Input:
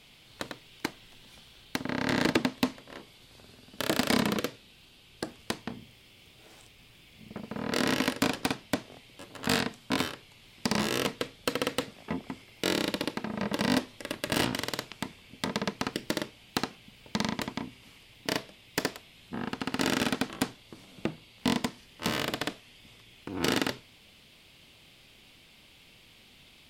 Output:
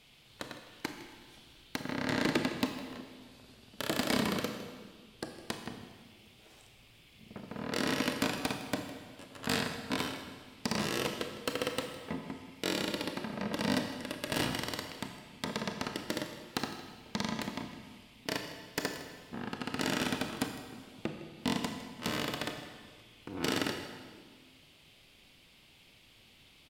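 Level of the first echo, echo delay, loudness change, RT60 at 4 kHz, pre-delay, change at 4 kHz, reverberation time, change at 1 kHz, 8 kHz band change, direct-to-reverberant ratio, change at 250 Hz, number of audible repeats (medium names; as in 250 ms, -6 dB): -16.5 dB, 158 ms, -4.0 dB, 1.4 s, 26 ms, -4.0 dB, 1.6 s, -4.0 dB, -4.0 dB, 5.0 dB, -4.0 dB, 1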